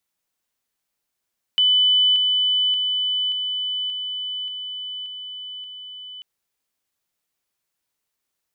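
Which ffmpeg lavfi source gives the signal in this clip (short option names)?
-f lavfi -i "aevalsrc='pow(10,(-13.5-3*floor(t/0.58))/20)*sin(2*PI*3000*t)':d=4.64:s=44100"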